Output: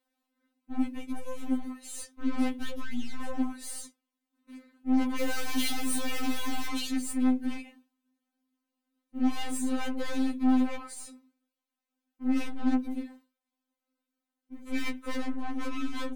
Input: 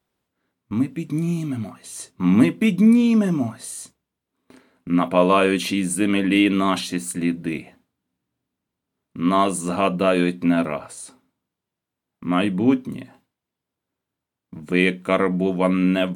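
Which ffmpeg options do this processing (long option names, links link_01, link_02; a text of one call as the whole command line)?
ffmpeg -i in.wav -filter_complex "[0:a]asettb=1/sr,asplit=3[link_01][link_02][link_03];[link_01]atrim=end=5.184[link_04];[link_02]atrim=start=5.18:end=6.67,asetpts=PTS-STARTPTS,afade=type=in:duration=0.004:curve=qsin,afade=type=out:start_time=1.486:duration=0.004:curve=qsin,aeval=exprs='val(0)+0.5*0.0891*sgn(val(0))':channel_layout=same[link_05];[link_03]atrim=start=6.666[link_06];[link_04][link_05]acrossfade=duration=0.004:curve1=hsin:curve2=qsin[link_07];[link_07][link_06]acrossfade=duration=0.004:curve1=qsin:curve2=hsin,aeval=exprs='(tanh(28.2*val(0)+0.5)-tanh(0.5))/28.2':channel_layout=same,afftfilt=real='re*3.46*eq(mod(b,12),0)':imag='im*3.46*eq(mod(b,12),0)':win_size=2048:overlap=0.75" out.wav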